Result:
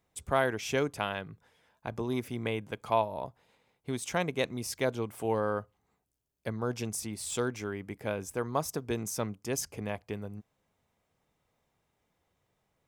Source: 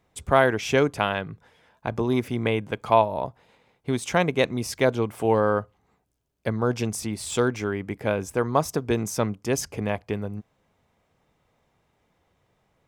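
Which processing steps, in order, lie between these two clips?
high shelf 5900 Hz +8.5 dB; gain -9 dB

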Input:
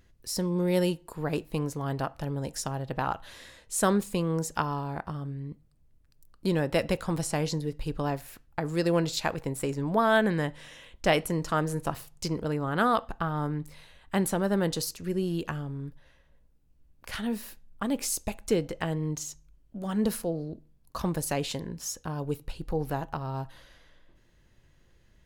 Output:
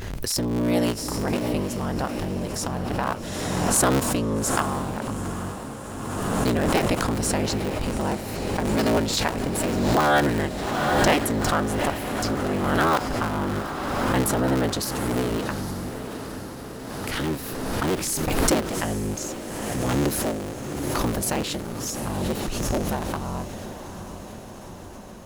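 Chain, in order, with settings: cycle switcher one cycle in 3, inverted; diffused feedback echo 0.817 s, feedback 66%, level -10 dB; backwards sustainer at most 25 dB/s; gain +3 dB

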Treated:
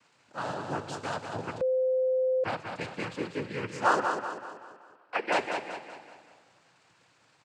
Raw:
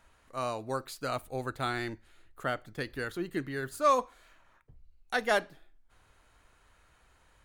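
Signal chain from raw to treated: plate-style reverb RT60 2.2 s, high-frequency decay 0.85×, DRR 12.5 dB; crackle 500/s -52 dBFS; 3.99–5.32 three-band isolator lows -21 dB, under 320 Hz, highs -23 dB, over 2700 Hz; noise vocoder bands 8; feedback echo 0.192 s, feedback 44%, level -6 dB; 1.61–2.44 bleep 516 Hz -23 dBFS

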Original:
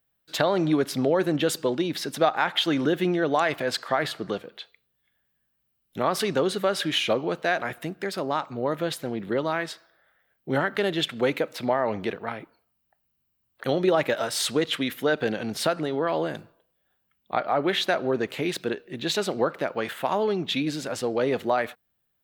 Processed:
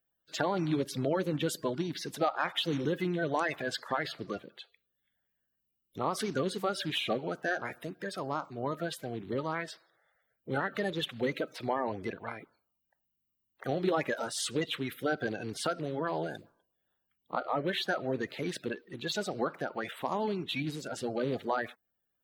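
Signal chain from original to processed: bin magnitudes rounded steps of 30 dB; gain -7 dB

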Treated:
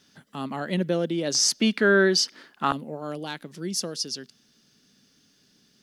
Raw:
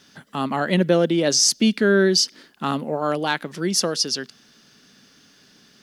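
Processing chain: bell 1200 Hz -3.5 dB 2.7 oct, from 1.35 s +8.5 dB, from 2.72 s -8 dB; gain -6 dB

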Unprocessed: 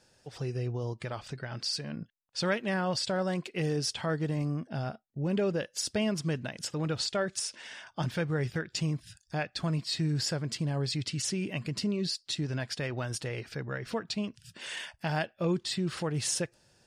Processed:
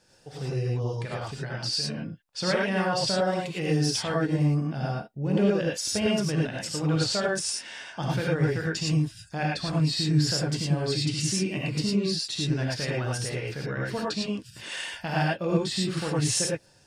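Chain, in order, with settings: non-linear reverb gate 0.13 s rising, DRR -3.5 dB

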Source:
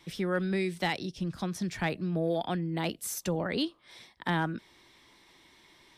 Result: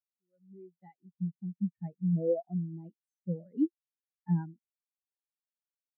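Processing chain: opening faded in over 1.14 s; spectral expander 4:1

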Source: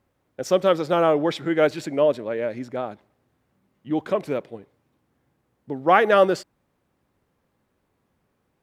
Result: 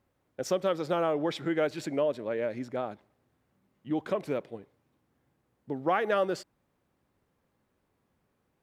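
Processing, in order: compressor 2.5:1, threshold -22 dBFS, peak gain reduction 8 dB; gain -4 dB

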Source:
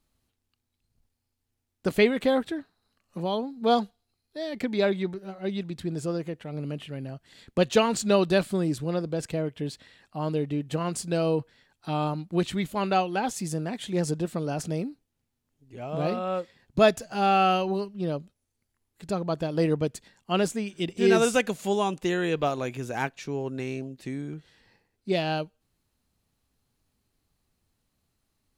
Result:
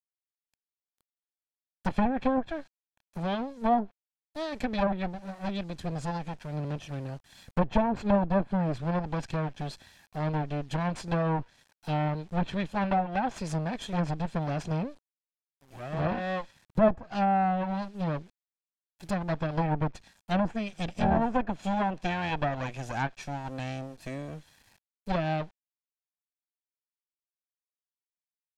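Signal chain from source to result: minimum comb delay 1.2 ms; requantised 10-bit, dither none; treble ducked by the level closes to 910 Hz, closed at -20.5 dBFS

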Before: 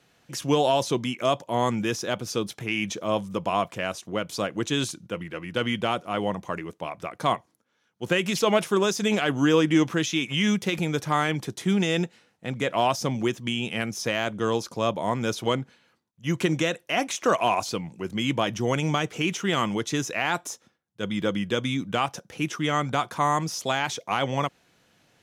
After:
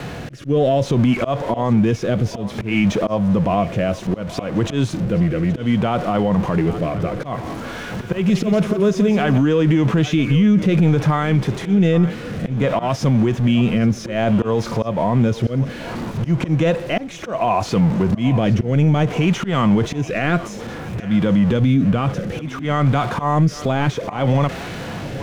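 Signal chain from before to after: zero-crossing step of -34 dBFS; LPF 1200 Hz 6 dB/oct; low shelf 93 Hz +7 dB; harmonic-percussive split harmonic +7 dB; dynamic EQ 330 Hz, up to -5 dB, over -33 dBFS, Q 3.6; auto swell 0.238 s; rotary speaker horn 0.6 Hz; thinning echo 0.824 s, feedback 51%, high-pass 390 Hz, level -18.5 dB; maximiser +18.5 dB; 7.16–9.38 lo-fi delay 0.175 s, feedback 35%, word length 7-bit, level -9 dB; gain -7.5 dB

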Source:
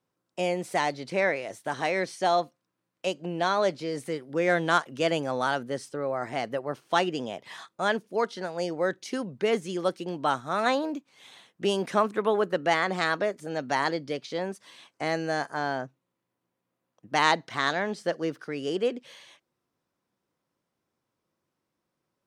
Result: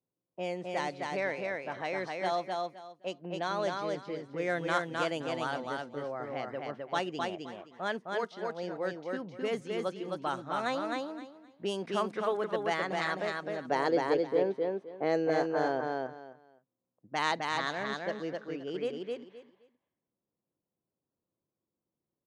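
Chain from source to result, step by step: low-pass opened by the level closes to 670 Hz, open at -21 dBFS; 13.65–15.81 bell 440 Hz +13.5 dB 1.2 oct; feedback echo 0.26 s, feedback 21%, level -3 dB; gain -8 dB

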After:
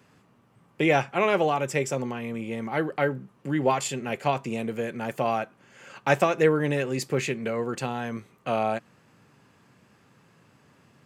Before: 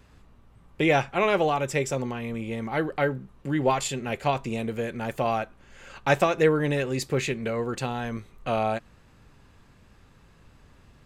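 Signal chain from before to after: HPF 120 Hz 24 dB/oct; bell 3800 Hz -5.5 dB 0.24 oct

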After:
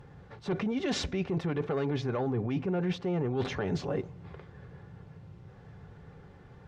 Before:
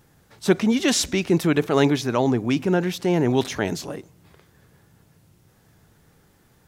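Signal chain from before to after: tape spacing loss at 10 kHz 33 dB; in parallel at -4.5 dB: sine folder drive 6 dB, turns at -6.5 dBFS; on the sum: notch comb 320 Hz; limiter -13 dBFS, peak gain reduction 9.5 dB; bell 230 Hz -8 dB 0.27 oct; reverse; compressor, threshold -28 dBFS, peak gain reduction 10.5 dB; reverse

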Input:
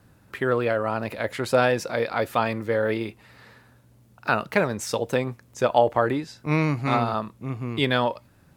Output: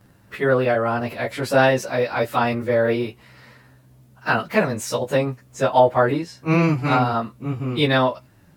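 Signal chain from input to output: pitch shift by moving bins +1 st; gain +6 dB

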